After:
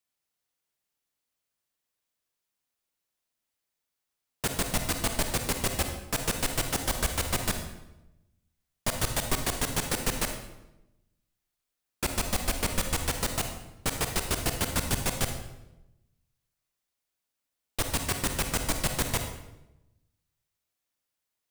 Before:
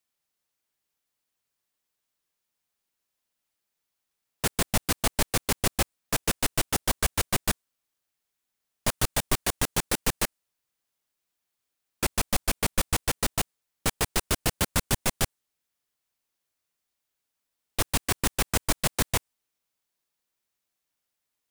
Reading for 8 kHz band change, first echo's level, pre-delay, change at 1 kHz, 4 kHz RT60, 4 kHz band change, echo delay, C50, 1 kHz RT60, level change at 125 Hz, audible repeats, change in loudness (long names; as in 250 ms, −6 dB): −2.0 dB, no echo audible, 39 ms, −2.0 dB, 0.75 s, −2.0 dB, no echo audible, 6.0 dB, 0.85 s, −1.0 dB, no echo audible, −2.0 dB